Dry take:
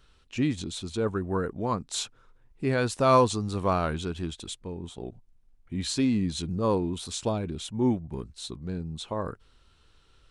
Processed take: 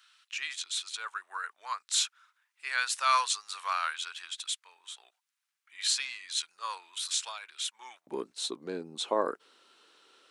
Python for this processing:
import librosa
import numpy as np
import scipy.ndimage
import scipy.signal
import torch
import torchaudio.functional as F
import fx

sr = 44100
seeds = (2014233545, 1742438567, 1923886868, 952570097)

y = fx.highpass(x, sr, hz=fx.steps((0.0, 1300.0), (8.07, 310.0)), slope=24)
y = F.gain(torch.from_numpy(y), 4.5).numpy()